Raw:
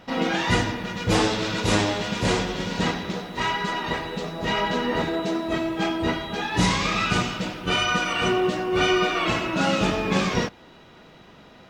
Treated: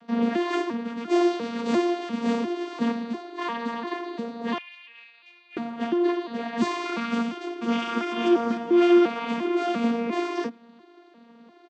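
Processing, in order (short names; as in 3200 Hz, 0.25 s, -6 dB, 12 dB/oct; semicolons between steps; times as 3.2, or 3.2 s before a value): arpeggiated vocoder bare fifth, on A#3, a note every 0.348 s; 4.58–5.57 ladder band-pass 2600 Hz, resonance 85%; 7.11–8.07 echo throw 0.5 s, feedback 45%, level -6 dB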